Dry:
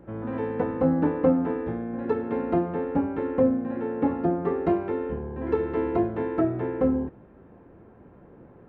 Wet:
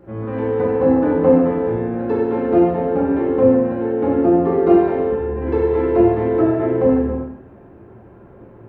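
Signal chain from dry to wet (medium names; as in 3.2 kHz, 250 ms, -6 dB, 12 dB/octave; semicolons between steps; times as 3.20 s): gated-style reverb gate 430 ms falling, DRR -5.5 dB; trim +1 dB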